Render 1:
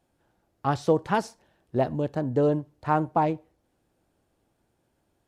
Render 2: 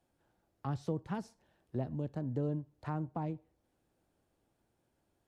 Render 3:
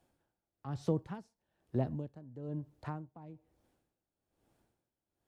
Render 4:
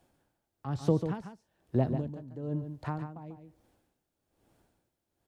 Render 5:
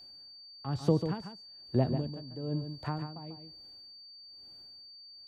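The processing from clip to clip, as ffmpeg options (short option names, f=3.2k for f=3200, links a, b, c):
-filter_complex "[0:a]acrossover=split=260[a][b];[b]acompressor=threshold=-40dB:ratio=2.5[c];[a][c]amix=inputs=2:normalize=0,volume=-6dB"
-af "aeval=exprs='val(0)*pow(10,-19*(0.5-0.5*cos(2*PI*1.1*n/s))/20)':c=same,volume=4dB"
-af "aecho=1:1:143:0.376,volume=5.5dB"
-af "aeval=exprs='val(0)+0.00355*sin(2*PI*4600*n/s)':c=same"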